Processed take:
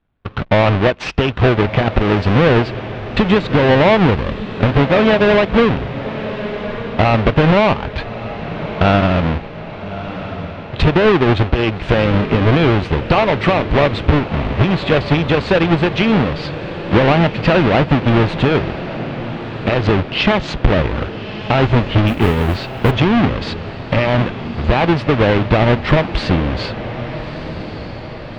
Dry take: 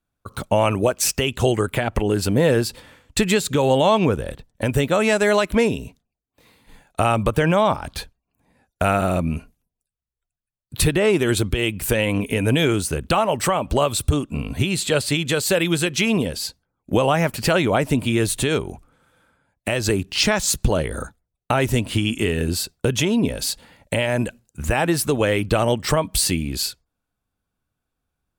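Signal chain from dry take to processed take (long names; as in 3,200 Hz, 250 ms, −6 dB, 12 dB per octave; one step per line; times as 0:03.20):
each half-wave held at its own peak
low-pass filter 3,300 Hz 24 dB per octave
in parallel at −0.5 dB: downward compressor, threshold −27 dBFS, peak gain reduction 16.5 dB
on the sum: feedback delay with all-pass diffusion 1,248 ms, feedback 56%, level −12 dB
0:22.07–0:22.91: noise that follows the level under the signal 31 dB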